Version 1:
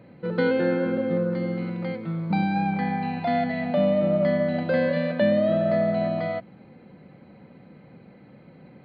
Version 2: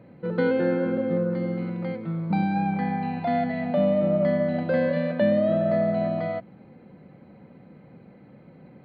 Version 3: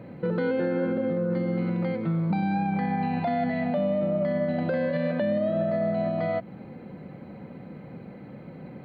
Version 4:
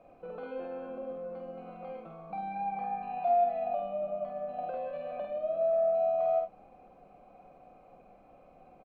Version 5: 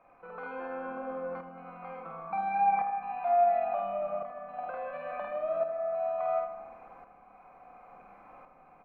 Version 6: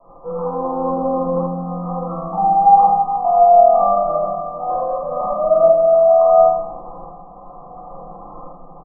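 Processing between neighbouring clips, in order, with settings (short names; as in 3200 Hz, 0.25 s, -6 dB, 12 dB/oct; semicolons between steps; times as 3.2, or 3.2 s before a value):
high shelf 2300 Hz -7.5 dB
compressor 2:1, threshold -33 dBFS, peak gain reduction 9 dB; limiter -25.5 dBFS, peak gain reduction 5.5 dB; gain +7 dB
vowel filter a; early reflections 50 ms -3.5 dB, 76 ms -9.5 dB; added noise brown -68 dBFS
band shelf 1400 Hz +14.5 dB; tremolo saw up 0.71 Hz, depth 65%; darkening echo 80 ms, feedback 68%, low-pass 1600 Hz, level -8 dB
steep low-pass 1200 Hz 96 dB/oct; comb 5.9 ms, depth 40%; shoebox room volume 99 m³, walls mixed, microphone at 2.8 m; gain +6 dB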